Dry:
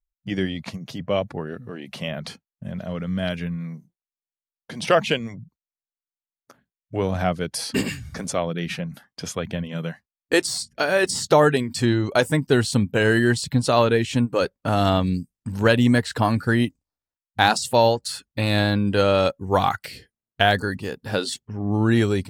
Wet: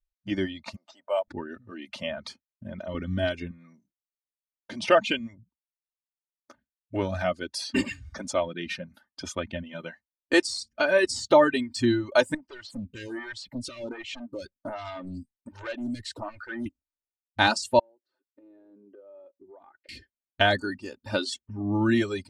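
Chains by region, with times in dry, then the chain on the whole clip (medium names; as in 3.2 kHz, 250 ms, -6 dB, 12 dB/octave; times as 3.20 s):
0.76–1.28 s: resonant high-pass 810 Hz, resonance Q 1.8 + peaking EQ 2.3 kHz -7 dB 2.4 oct + decimation joined by straight lines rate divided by 4×
2.94–3.51 s: bass shelf 400 Hz +8 dB + comb 2.7 ms, depth 39%
12.34–16.66 s: compression 2.5:1, threshold -25 dBFS + hard clipper -24.5 dBFS + lamp-driven phase shifter 1.3 Hz
17.79–19.89 s: ladder band-pass 440 Hz, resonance 60% + compression 4:1, threshold -45 dBFS
whole clip: reverb removal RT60 1.7 s; low-pass 6.7 kHz 12 dB/octave; comb 3.3 ms, depth 76%; trim -4 dB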